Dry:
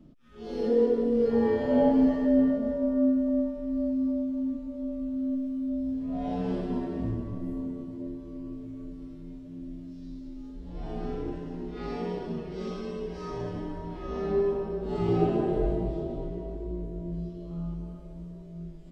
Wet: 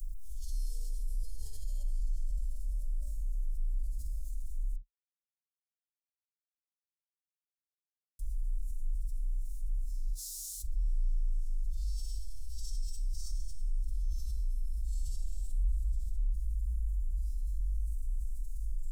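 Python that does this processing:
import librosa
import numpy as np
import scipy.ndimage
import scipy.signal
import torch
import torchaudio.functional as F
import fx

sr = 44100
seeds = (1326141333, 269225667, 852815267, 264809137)

y = fx.highpass(x, sr, hz=580.0, slope=12, at=(10.12, 10.63))
y = fx.edit(y, sr, fx.silence(start_s=4.76, length_s=3.43), tone=tone)
y = scipy.signal.sosfilt(scipy.signal.cheby2(4, 70, [150.0, 2200.0], 'bandstop', fs=sr, output='sos'), y)
y = fx.peak_eq(y, sr, hz=1200.0, db=14.5, octaves=1.2)
y = fx.env_flatten(y, sr, amount_pct=70)
y = F.gain(torch.from_numpy(y), 6.0).numpy()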